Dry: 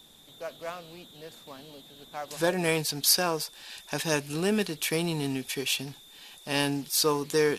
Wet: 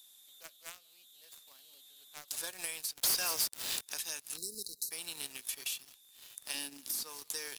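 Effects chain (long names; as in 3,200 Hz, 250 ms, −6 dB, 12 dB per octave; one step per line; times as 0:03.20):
first difference
single-tap delay 183 ms −23.5 dB
leveller curve on the samples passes 3
downward compressor 12 to 1, threshold −29 dBFS, peak gain reduction 17.5 dB
0:02.97–0:03.81: leveller curve on the samples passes 5
0:04.37–0:04.91: linear-phase brick-wall band-stop 530–3,800 Hz
0:06.54–0:07.03: parametric band 270 Hz +13 dB 0.93 octaves
multiband upward and downward compressor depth 40%
level −6 dB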